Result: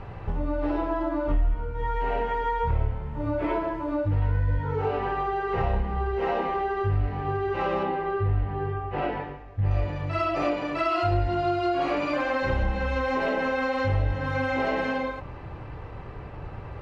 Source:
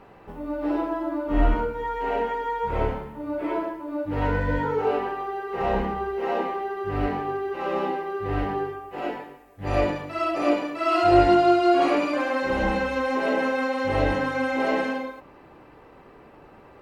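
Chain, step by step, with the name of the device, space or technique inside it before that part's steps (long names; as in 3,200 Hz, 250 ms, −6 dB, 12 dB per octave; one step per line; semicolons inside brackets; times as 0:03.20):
jukebox (low-pass filter 5,400 Hz 12 dB per octave; low shelf with overshoot 160 Hz +13 dB, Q 1.5; downward compressor 5 to 1, threshold −30 dBFS, peak gain reduction 23.5 dB)
0:07.83–0:09.71: high-frequency loss of the air 160 metres
level +6.5 dB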